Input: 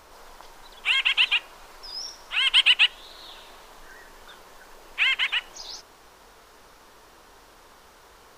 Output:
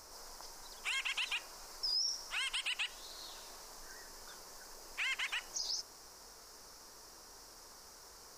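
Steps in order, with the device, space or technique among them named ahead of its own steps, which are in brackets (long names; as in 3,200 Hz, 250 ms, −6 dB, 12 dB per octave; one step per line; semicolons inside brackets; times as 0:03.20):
over-bright horn tweeter (high shelf with overshoot 4,200 Hz +7.5 dB, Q 3; brickwall limiter −21.5 dBFS, peak gain reduction 11 dB)
level −7 dB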